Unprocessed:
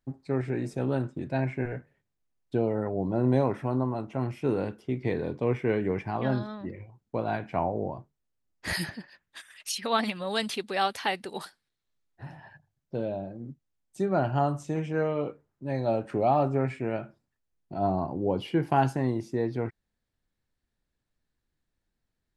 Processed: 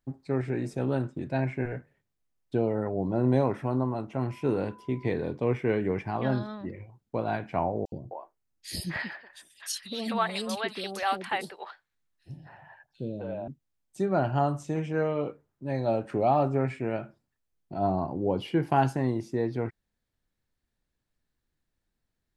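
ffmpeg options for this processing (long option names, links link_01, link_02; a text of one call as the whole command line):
ffmpeg -i in.wav -filter_complex "[0:a]asettb=1/sr,asplit=3[link_01][link_02][link_03];[link_01]atrim=end=4.294[link_04];[link_02]atrim=start=4.29:end=5.12,asetpts=PTS-STARTPTS,afade=type=in:duration=0.004:curve=qsin,afade=type=out:start_time=0.826:duration=0.004:curve=qsin,aeval=exprs='val(0)+0.00282*sin(2*PI*1000*n/s)':channel_layout=same[link_05];[link_03]atrim=start=5.116[link_06];[link_04][link_05]acrossfade=duration=0.004:curve1=hsin:curve2=qsin[link_07];[link_07][link_06]acrossfade=duration=0.004:curve1=qsin:curve2=hsin,asettb=1/sr,asplit=3[link_08][link_09][link_10];[link_08]atrim=end=7.854[link_11];[link_09]atrim=start=7.85:end=13.48,asetpts=PTS-STARTPTS,afade=type=in:duration=0.004:curve=qsin,afade=type=out:start_time=5.626:duration=0.004:curve=qsin,acrossover=split=470|3200[link_12][link_13][link_14];[link_12]adelay=70[link_15];[link_13]adelay=260[link_16];[link_15][link_16][link_14]amix=inputs=3:normalize=0,atrim=end_sample=248283[link_17];[link_10]atrim=start=13.476[link_18];[link_11][link_17]acrossfade=duration=0.004:curve1=hsin:curve2=qsin[link_19];[link_19][link_18]acrossfade=duration=0.004:curve1=qsin:curve2=hsin" out.wav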